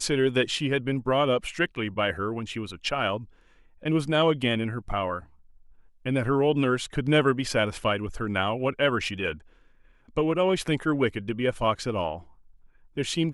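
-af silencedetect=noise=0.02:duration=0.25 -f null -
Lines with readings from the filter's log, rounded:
silence_start: 3.23
silence_end: 3.83 | silence_duration: 0.61
silence_start: 5.19
silence_end: 6.06 | silence_duration: 0.87
silence_start: 9.35
silence_end: 10.17 | silence_duration: 0.82
silence_start: 12.17
silence_end: 12.97 | silence_duration: 0.80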